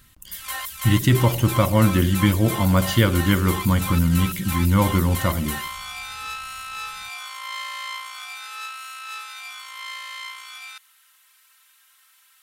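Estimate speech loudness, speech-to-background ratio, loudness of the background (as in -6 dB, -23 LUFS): -20.0 LUFS, 11.0 dB, -31.0 LUFS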